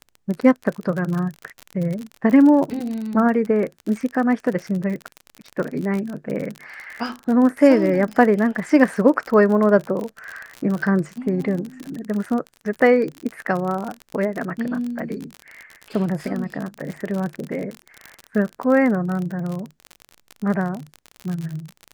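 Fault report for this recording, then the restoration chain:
crackle 45/s -25 dBFS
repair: de-click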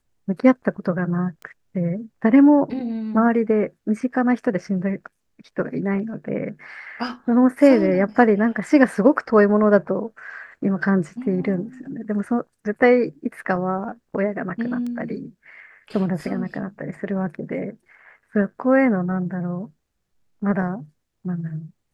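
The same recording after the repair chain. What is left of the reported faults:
none

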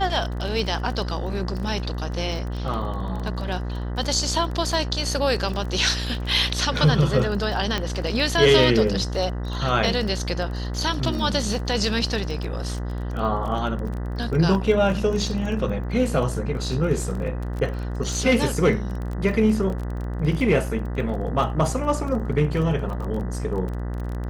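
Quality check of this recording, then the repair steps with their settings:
buzz 60 Hz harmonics 33 -28 dBFS
crackle 23/s -29 dBFS
7.78 pop -10 dBFS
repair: de-click; de-hum 60 Hz, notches 33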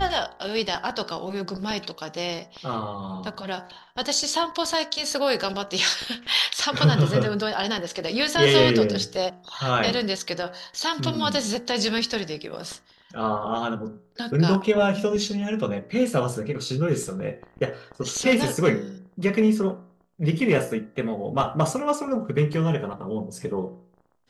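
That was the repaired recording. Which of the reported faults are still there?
none

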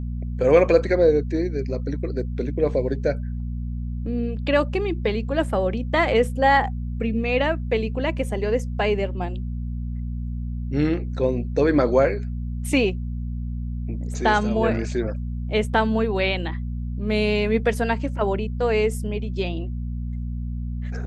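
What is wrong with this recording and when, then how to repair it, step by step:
hum 60 Hz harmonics 4 -28 dBFS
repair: de-hum 60 Hz, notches 4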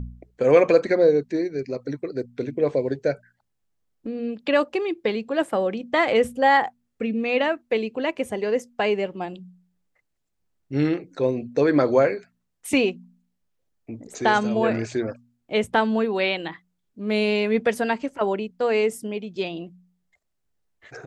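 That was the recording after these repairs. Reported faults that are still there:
none

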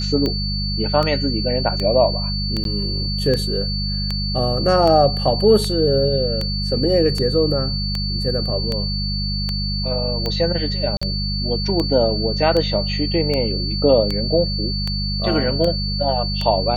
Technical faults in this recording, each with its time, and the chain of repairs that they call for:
hum 50 Hz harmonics 4 -24 dBFS
tick 78 rpm -10 dBFS
tone 4500 Hz -25 dBFS
2.64–2.65 gap 12 ms
10.97–11.02 gap 45 ms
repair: de-click; notch 4500 Hz, Q 30; de-hum 50 Hz, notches 4; interpolate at 2.64, 12 ms; interpolate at 10.97, 45 ms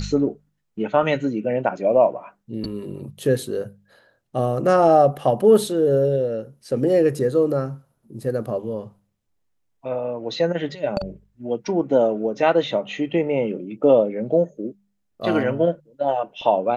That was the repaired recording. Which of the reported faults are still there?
none

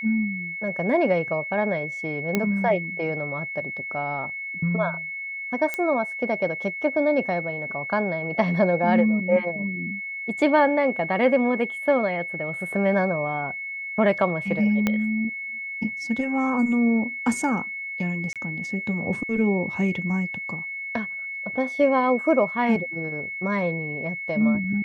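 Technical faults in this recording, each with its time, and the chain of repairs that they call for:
tone 2200 Hz -30 dBFS
2.35 pop -8 dBFS
5.74 pop -13 dBFS
14.87 pop -9 dBFS
18.33–18.36 gap 27 ms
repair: de-click; notch 2200 Hz, Q 30; interpolate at 18.33, 27 ms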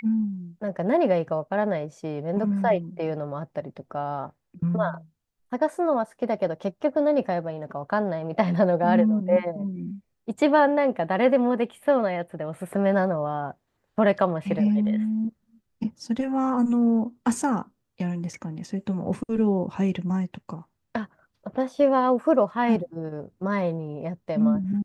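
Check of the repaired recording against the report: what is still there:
14.87 pop

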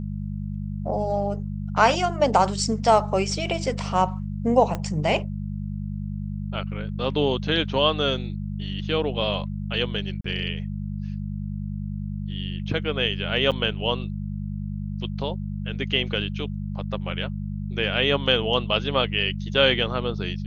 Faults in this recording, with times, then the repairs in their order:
hum 50 Hz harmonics 4 -30 dBFS
4.75 pop -14 dBFS
10.21–10.24 gap 34 ms
13.51–13.52 gap 7.6 ms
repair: de-click; de-hum 50 Hz, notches 4; interpolate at 10.21, 34 ms; interpolate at 13.51, 7.6 ms

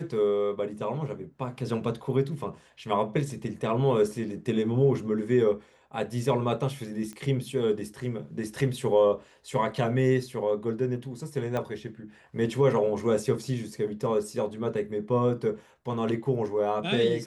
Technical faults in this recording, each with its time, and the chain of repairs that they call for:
7.13 pop -27 dBFS
11.57 pop -18 dBFS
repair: de-click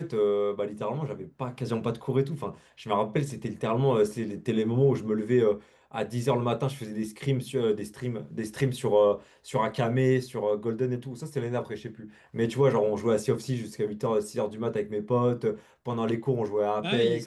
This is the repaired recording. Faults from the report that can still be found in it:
11.57 pop

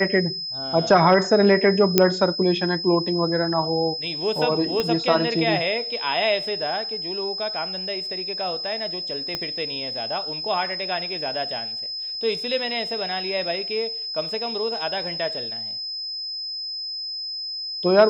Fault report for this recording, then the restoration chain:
tone 5100 Hz -28 dBFS
1.98 pop 0 dBFS
4.8 pop -10 dBFS
9.35 pop -12 dBFS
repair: de-click; notch 5100 Hz, Q 30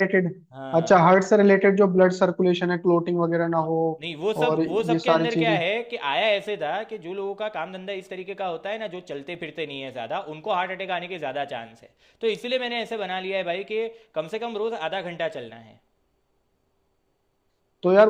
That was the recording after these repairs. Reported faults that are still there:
4.8 pop
9.35 pop

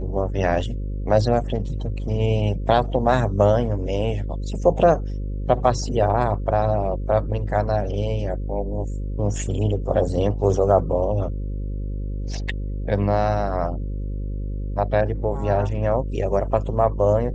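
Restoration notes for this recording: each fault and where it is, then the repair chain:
buzz 50 Hz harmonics 11 -27 dBFS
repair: de-hum 50 Hz, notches 11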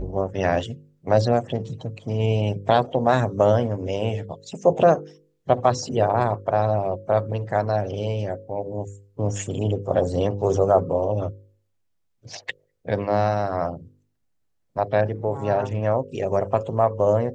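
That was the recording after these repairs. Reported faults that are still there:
none

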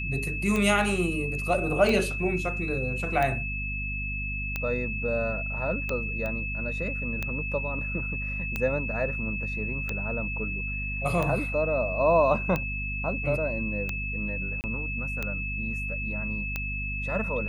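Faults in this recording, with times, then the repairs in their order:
hum 50 Hz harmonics 5 -34 dBFS
tick 45 rpm -15 dBFS
tone 2600 Hz -32 dBFS
6.26 pop -21 dBFS
14.61–14.64 gap 29 ms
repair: de-click; de-hum 50 Hz, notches 5; notch 2600 Hz, Q 30; interpolate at 14.61, 29 ms

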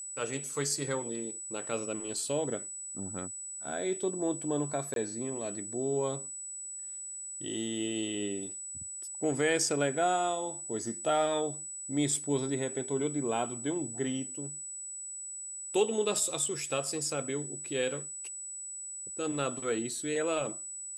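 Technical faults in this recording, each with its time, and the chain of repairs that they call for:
tone 7900 Hz -39 dBFS
4.94–4.96 gap 22 ms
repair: notch 7900 Hz, Q 30; interpolate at 4.94, 22 ms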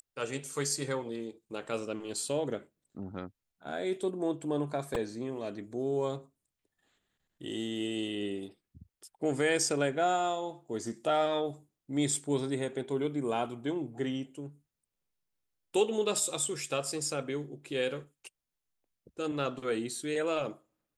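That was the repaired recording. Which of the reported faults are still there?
none

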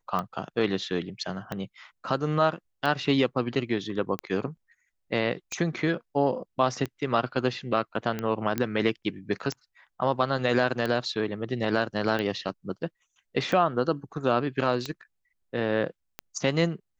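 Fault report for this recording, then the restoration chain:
tick 45 rpm -17 dBFS
8.58 pop -13 dBFS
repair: de-click

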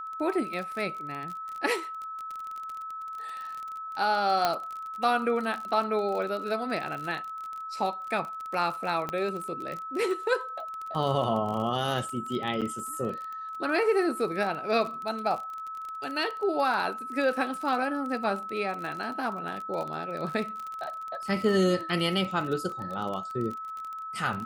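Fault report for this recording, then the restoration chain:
crackle 32/s -33 dBFS
tone 1300 Hz -35 dBFS
4.45 pop -10 dBFS
9.09 pop -18 dBFS
12.61–12.62 gap 7.3 ms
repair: de-click; notch 1300 Hz, Q 30; interpolate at 12.61, 7.3 ms

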